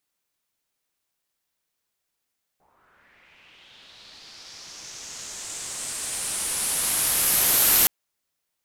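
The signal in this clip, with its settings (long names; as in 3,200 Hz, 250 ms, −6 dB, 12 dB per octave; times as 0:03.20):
filter sweep on noise white, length 5.27 s lowpass, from 740 Hz, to 13,000 Hz, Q 3.2, linear, gain ramp +38 dB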